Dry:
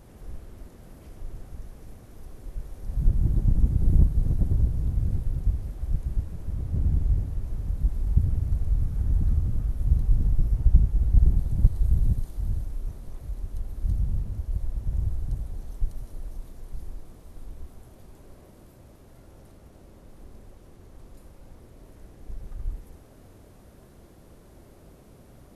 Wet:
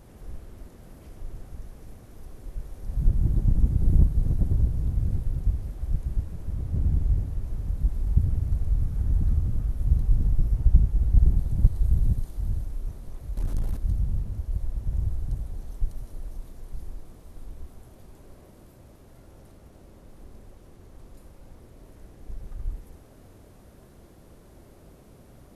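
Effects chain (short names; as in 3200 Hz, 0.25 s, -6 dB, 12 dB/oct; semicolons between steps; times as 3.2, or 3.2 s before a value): 13.37–13.77 sample leveller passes 3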